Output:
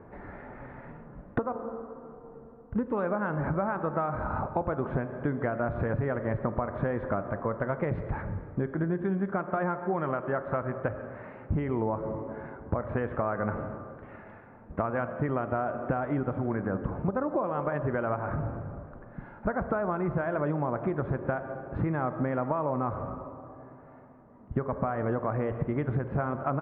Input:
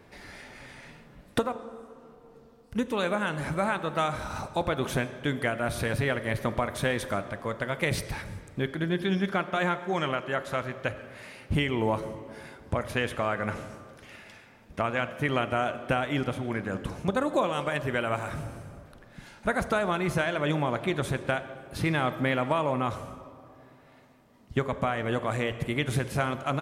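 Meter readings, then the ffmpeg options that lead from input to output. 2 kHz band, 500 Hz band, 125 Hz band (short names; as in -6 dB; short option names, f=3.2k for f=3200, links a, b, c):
-7.5 dB, -0.5 dB, +0.5 dB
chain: -af "lowpass=f=1.4k:w=0.5412,lowpass=f=1.4k:w=1.3066,acompressor=threshold=-31dB:ratio=6,volume=5.5dB"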